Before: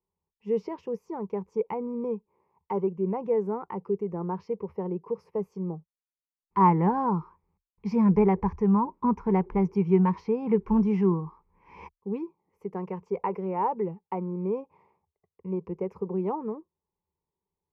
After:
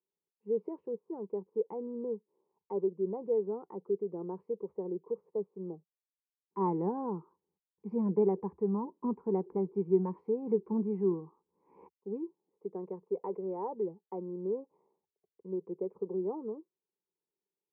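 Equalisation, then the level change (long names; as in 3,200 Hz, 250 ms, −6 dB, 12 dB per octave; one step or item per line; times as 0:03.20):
four-pole ladder band-pass 460 Hz, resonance 25%
low-shelf EQ 500 Hz +9.5 dB
0.0 dB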